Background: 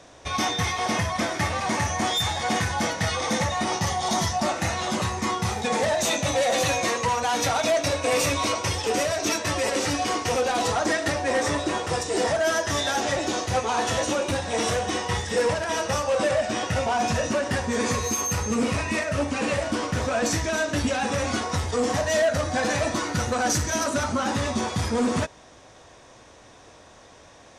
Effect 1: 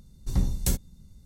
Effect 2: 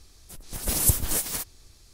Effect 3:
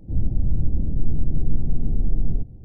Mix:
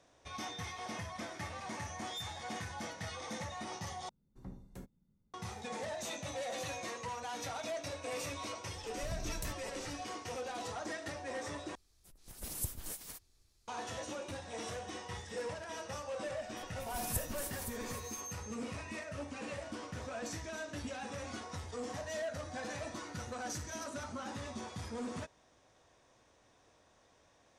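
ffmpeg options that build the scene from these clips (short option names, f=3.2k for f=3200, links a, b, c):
-filter_complex "[1:a]asplit=2[a][b];[2:a]asplit=2[c][d];[0:a]volume=-17.5dB[e];[a]acrossover=split=150 2000:gain=0.2 1 0.112[f][g][h];[f][g][h]amix=inputs=3:normalize=0[i];[b]acompressor=threshold=-30dB:ratio=6:attack=3.2:release=140:knee=1:detection=peak[j];[d]aecho=1:1:515:0.355[k];[e]asplit=3[l][m][n];[l]atrim=end=4.094[o];[i]atrim=end=1.25,asetpts=PTS-STARTPTS,volume=-15.5dB[p];[m]atrim=start=5.336:end=11.754[q];[c]atrim=end=1.93,asetpts=PTS-STARTPTS,volume=-17.5dB[r];[n]atrim=start=13.676[s];[j]atrim=end=1.25,asetpts=PTS-STARTPTS,volume=-7dB,afade=t=in:d=0.004:c=hsin,afade=t=out:st=1.246:d=0.004:c=hsin,adelay=8760[t];[k]atrim=end=1.93,asetpts=PTS-STARTPTS,volume=-16.5dB,afade=t=in:d=0.004:c=hsin,afade=t=out:st=1.926:d=0.004:c=hsin,adelay=16270[u];[o][p]acrossfade=d=0.004:c1=hsin:c2=hsin[v];[v][q]acrossfade=d=0.004:c1=hsin:c2=hsin[w];[w][r]acrossfade=d=0.004:c1=hsin:c2=hsin[x];[x][s]acrossfade=d=0.004:c1=hsin:c2=hsin[y];[y][t][u]amix=inputs=3:normalize=0"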